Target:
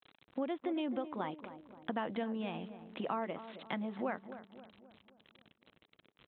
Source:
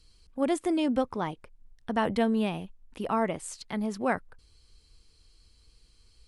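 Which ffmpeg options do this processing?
ffmpeg -i in.wav -filter_complex "[0:a]aresample=8000,aeval=exprs='val(0)*gte(abs(val(0)),0.00211)':channel_layout=same,aresample=44100,acompressor=threshold=-35dB:ratio=10,highpass=210,bandreject=frequency=420:width=12,asplit=2[link_01][link_02];[link_02]adelay=265,lowpass=frequency=1200:poles=1,volume=-11.5dB,asplit=2[link_03][link_04];[link_04]adelay=265,lowpass=frequency=1200:poles=1,volume=0.53,asplit=2[link_05][link_06];[link_06]adelay=265,lowpass=frequency=1200:poles=1,volume=0.53,asplit=2[link_07][link_08];[link_08]adelay=265,lowpass=frequency=1200:poles=1,volume=0.53,asplit=2[link_09][link_10];[link_10]adelay=265,lowpass=frequency=1200:poles=1,volume=0.53,asplit=2[link_11][link_12];[link_12]adelay=265,lowpass=frequency=1200:poles=1,volume=0.53[link_13];[link_01][link_03][link_05][link_07][link_09][link_11][link_13]amix=inputs=7:normalize=0,volume=2.5dB" out.wav

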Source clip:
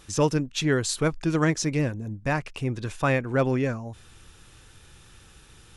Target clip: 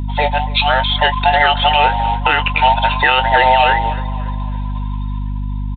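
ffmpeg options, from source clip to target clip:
ffmpeg -i in.wav -filter_complex "[0:a]afftfilt=real='real(if(between(b,1,1008),(2*floor((b-1)/48)+1)*48-b,b),0)':imag='imag(if(between(b,1,1008),(2*floor((b-1)/48)+1)*48-b,b),0)*if(between(b,1,1008),-1,1)':win_size=2048:overlap=0.75,afftdn=noise_reduction=19:noise_floor=-47,aresample=16000,acrusher=bits=5:mode=log:mix=0:aa=0.000001,aresample=44100,equalizer=frequency=97:width=5.6:gain=10,dynaudnorm=framelen=210:gausssize=11:maxgain=13dB,aderivative,aeval=exprs='val(0)+0.00501*(sin(2*PI*50*n/s)+sin(2*PI*2*50*n/s)/2+sin(2*PI*3*50*n/s)/3+sin(2*PI*4*50*n/s)/4+sin(2*PI*5*50*n/s)/5)':channel_layout=same,asplit=2[link_01][link_02];[link_02]adelay=21,volume=-12.5dB[link_03];[link_01][link_03]amix=inputs=2:normalize=0,asplit=2[link_04][link_05];[link_05]adelay=283,lowpass=frequency=2300:poles=1,volume=-19dB,asplit=2[link_06][link_07];[link_07]adelay=283,lowpass=frequency=2300:poles=1,volume=0.49,asplit=2[link_08][link_09];[link_09]adelay=283,lowpass=frequency=2300:poles=1,volume=0.49,asplit=2[link_10][link_11];[link_11]adelay=283,lowpass=frequency=2300:poles=1,volume=0.49[link_12];[link_06][link_08][link_10][link_12]amix=inputs=4:normalize=0[link_13];[link_04][link_13]amix=inputs=2:normalize=0,aresample=8000,aresample=44100,alimiter=level_in=26dB:limit=-1dB:release=50:level=0:latency=1,volume=-1dB" out.wav

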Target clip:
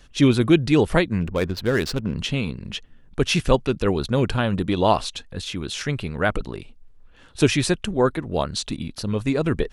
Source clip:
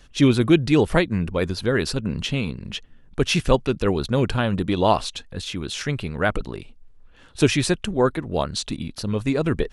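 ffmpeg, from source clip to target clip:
ffmpeg -i in.wav -filter_complex "[0:a]asettb=1/sr,asplit=3[link_01][link_02][link_03];[link_01]atrim=end=1.204[link_04];[link_02]atrim=start=1.2:end=2.16,asetpts=PTS-STARTPTS,afade=type=in:duration=0.004:curve=qsin,afade=type=out:start_time=0.956:duration=0.004:curve=qsin,adynamicsmooth=sensitivity=7.5:basefreq=1000[link_05];[link_03]atrim=start=2.156[link_06];[link_04][link_05]acrossfade=duration=0.004:curve1=hsin:curve2=qsin[link_07];[link_07][link_06]acrossfade=duration=0.004:curve1=qsin:curve2=hsin" out.wav

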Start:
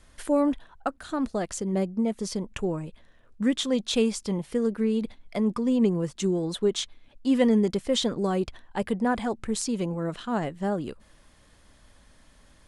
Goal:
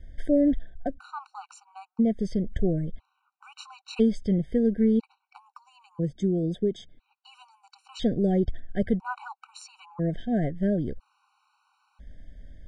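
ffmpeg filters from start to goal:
ffmpeg -i in.wav -filter_complex "[0:a]aemphasis=mode=reproduction:type=bsi,asettb=1/sr,asplit=3[link_01][link_02][link_03];[link_01]atrim=end=5.364[link_04];[link_02]atrim=start=5.36:end=7.86,asetpts=PTS-STARTPTS,afade=type=in:duration=0.004:curve=qsin,afade=type=out:start_time=2.496:duration=0.004:curve=qsin,acrossover=split=97|740|3400[link_05][link_06][link_07][link_08];[link_05]acompressor=threshold=-52dB:ratio=4[link_09];[link_06]acompressor=threshold=-20dB:ratio=4[link_10];[link_07]acompressor=threshold=-52dB:ratio=4[link_11];[link_08]acompressor=threshold=-43dB:ratio=4[link_12];[link_09][link_10][link_11][link_12]amix=inputs=4:normalize=0[link_13];[link_03]atrim=start=7.856[link_14];[link_04][link_13]acrossfade=duration=0.004:curve1=hsin:curve2=qsin[link_15];[link_15][link_14]acrossfade=duration=0.004:curve1=qsin:curve2=hsin,highshelf=frequency=8100:gain=-9.5,afftfilt=real='re*gt(sin(2*PI*0.5*pts/sr)*(1-2*mod(floor(b*sr/1024/760),2)),0)':imag='im*gt(sin(2*PI*0.5*pts/sr)*(1-2*mod(floor(b*sr/1024/760),2)),0)':win_size=1024:overlap=0.75,volume=-1dB" out.wav

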